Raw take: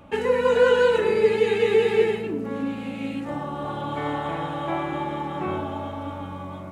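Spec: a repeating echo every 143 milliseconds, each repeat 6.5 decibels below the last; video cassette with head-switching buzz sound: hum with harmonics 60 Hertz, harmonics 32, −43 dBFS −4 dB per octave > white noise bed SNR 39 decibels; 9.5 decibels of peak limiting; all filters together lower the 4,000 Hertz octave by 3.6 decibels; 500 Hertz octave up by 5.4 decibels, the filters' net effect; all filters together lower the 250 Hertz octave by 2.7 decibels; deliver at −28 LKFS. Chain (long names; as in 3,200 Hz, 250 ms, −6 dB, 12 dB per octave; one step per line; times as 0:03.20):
parametric band 250 Hz −6.5 dB
parametric band 500 Hz +7.5 dB
parametric band 4,000 Hz −5.5 dB
brickwall limiter −12 dBFS
repeating echo 143 ms, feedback 47%, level −6.5 dB
hum with harmonics 60 Hz, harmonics 32, −43 dBFS −4 dB per octave
white noise bed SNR 39 dB
level −6 dB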